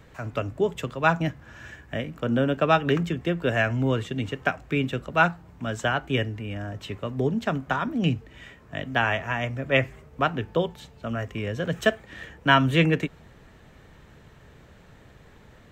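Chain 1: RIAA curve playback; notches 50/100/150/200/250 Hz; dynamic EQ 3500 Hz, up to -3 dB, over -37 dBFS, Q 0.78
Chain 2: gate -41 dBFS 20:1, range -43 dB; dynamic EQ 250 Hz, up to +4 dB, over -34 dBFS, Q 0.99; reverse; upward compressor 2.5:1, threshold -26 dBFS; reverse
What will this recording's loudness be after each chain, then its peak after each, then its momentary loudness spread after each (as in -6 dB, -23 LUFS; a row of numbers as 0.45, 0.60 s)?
-21.0, -24.5 LUFS; -2.5, -4.5 dBFS; 11, 13 LU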